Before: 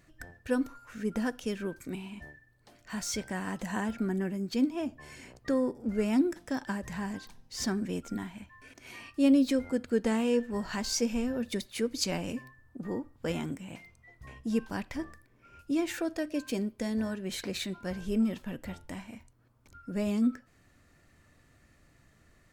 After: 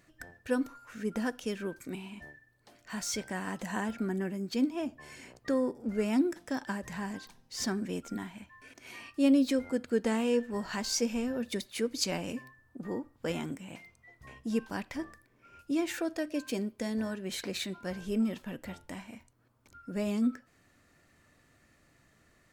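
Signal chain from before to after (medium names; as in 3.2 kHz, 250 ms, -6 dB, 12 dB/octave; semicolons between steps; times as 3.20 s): bass shelf 110 Hz -9.5 dB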